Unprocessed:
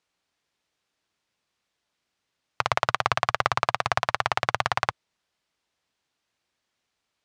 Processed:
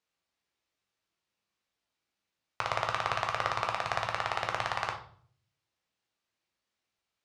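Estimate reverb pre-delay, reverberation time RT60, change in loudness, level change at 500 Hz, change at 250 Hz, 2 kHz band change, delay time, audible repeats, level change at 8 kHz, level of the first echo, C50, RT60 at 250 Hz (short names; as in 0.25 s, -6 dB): 9 ms, 0.55 s, -6.5 dB, -5.5 dB, -6.5 dB, -6.5 dB, none, none, -7.0 dB, none, 9.5 dB, 0.70 s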